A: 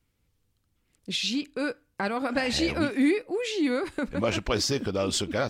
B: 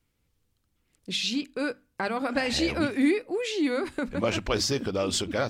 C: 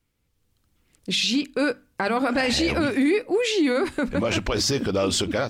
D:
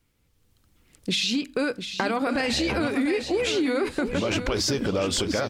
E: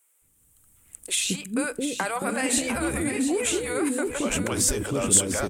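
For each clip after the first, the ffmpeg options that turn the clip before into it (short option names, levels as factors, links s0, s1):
-af "bandreject=f=50:t=h:w=6,bandreject=f=100:t=h:w=6,bandreject=f=150:t=h:w=6,bandreject=f=200:t=h:w=6,bandreject=f=250:t=h:w=6"
-af "dynaudnorm=f=330:g=3:m=2.37,alimiter=limit=0.2:level=0:latency=1:release=13"
-af "acompressor=threshold=0.0355:ratio=3,aecho=1:1:700|1400|2100:0.335|0.0871|0.0226,volume=1.68"
-filter_complex "[0:a]highshelf=f=6500:t=q:w=3:g=11,acrossover=split=470[s0][s1];[s0]adelay=220[s2];[s2][s1]amix=inputs=2:normalize=0"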